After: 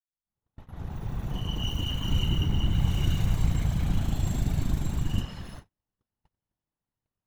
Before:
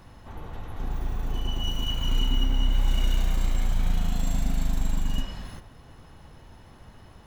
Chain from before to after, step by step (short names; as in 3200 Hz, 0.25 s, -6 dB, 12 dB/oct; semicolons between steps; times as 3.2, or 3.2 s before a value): opening faded in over 1.34 s; whisperiser; gate -41 dBFS, range -40 dB; gain -2 dB